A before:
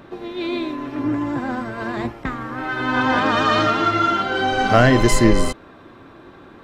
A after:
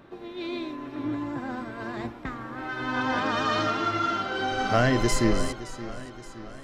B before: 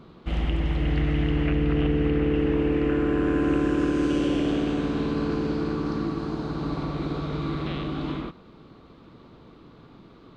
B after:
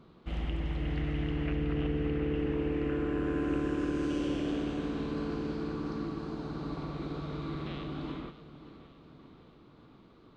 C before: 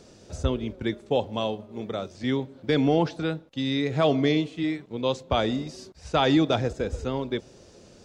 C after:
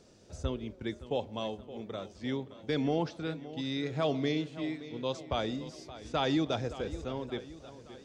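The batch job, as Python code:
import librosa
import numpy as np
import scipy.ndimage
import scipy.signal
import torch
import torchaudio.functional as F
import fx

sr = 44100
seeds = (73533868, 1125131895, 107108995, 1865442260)

y = fx.dynamic_eq(x, sr, hz=5500.0, q=2.1, threshold_db=-47.0, ratio=4.0, max_db=5)
y = fx.echo_warbled(y, sr, ms=571, feedback_pct=54, rate_hz=2.8, cents=83, wet_db=-15.0)
y = F.gain(torch.from_numpy(y), -8.5).numpy()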